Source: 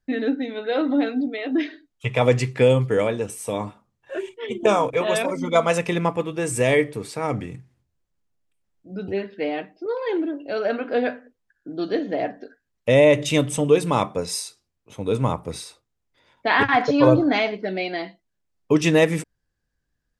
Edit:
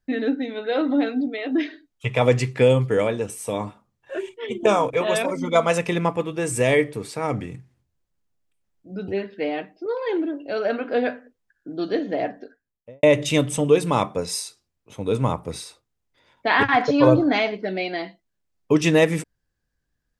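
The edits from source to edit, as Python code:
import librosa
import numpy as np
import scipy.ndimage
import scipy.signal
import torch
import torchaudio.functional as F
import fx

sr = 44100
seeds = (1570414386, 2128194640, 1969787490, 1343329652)

y = fx.studio_fade_out(x, sr, start_s=12.31, length_s=0.72)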